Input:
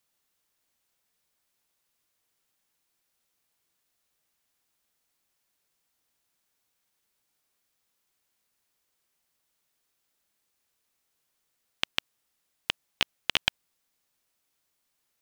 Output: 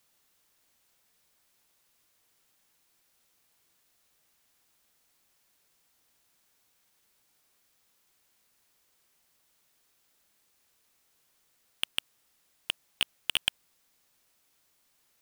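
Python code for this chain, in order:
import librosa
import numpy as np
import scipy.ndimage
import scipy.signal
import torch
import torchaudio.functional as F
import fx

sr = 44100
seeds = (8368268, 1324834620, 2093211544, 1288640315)

y = np.clip(x, -10.0 ** (-20.0 / 20.0), 10.0 ** (-20.0 / 20.0))
y = y * librosa.db_to_amplitude(7.0)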